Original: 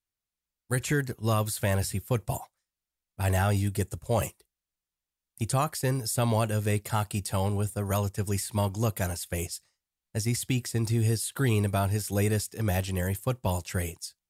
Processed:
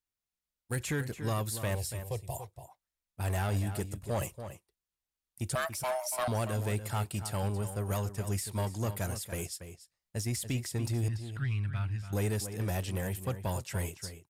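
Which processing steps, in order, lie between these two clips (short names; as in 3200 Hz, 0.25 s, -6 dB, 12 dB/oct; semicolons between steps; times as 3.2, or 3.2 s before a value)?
5.55–6.28 frequency shift +500 Hz; 11.08–12.13 EQ curve 130 Hz 0 dB, 440 Hz -25 dB, 1600 Hz -2 dB, 2600 Hz -3 dB, 13000 Hz -29 dB; soft clip -22 dBFS, distortion -16 dB; 1.75–2.38 fixed phaser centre 590 Hz, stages 4; outdoor echo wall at 49 m, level -10 dB; gain -3.5 dB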